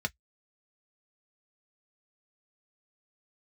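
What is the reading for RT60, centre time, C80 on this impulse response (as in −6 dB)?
non-exponential decay, 3 ms, 58.5 dB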